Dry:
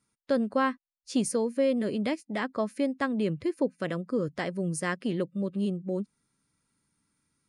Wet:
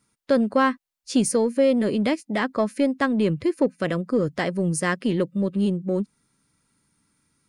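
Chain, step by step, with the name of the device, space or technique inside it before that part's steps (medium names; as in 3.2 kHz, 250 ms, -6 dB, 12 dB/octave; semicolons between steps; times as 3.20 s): parallel distortion (in parallel at -12.5 dB: hard clipper -28.5 dBFS, distortion -8 dB); on the sum: trim +5.5 dB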